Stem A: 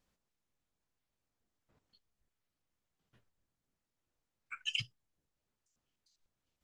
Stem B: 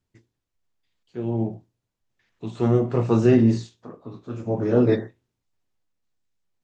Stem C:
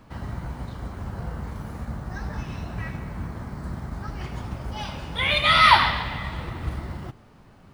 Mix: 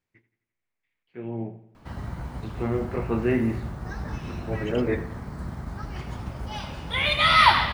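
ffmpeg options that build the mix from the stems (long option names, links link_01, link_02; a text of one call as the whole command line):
ffmpeg -i stem1.wav -i stem2.wav -i stem3.wav -filter_complex "[0:a]volume=-8.5dB[link_01];[1:a]lowpass=frequency=2200:width_type=q:width=4,volume=-6.5dB,asplit=2[link_02][link_03];[link_03]volume=-16.5dB[link_04];[2:a]lowshelf=frequency=100:gain=7,adelay=1750,volume=-1.5dB[link_05];[link_04]aecho=0:1:86|172|258|344|430|516|602|688:1|0.52|0.27|0.141|0.0731|0.038|0.0198|0.0103[link_06];[link_01][link_02][link_05][link_06]amix=inputs=4:normalize=0,lowshelf=frequency=98:gain=-7" out.wav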